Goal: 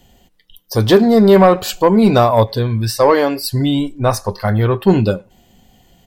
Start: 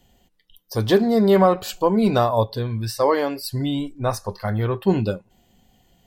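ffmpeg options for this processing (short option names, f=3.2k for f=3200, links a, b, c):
-filter_complex "[0:a]acontrast=73,asplit=2[a][b];[b]adelay=100,highpass=300,lowpass=3.4k,asoftclip=type=hard:threshold=-11.5dB,volume=-28dB[c];[a][c]amix=inputs=2:normalize=0,volume=1.5dB"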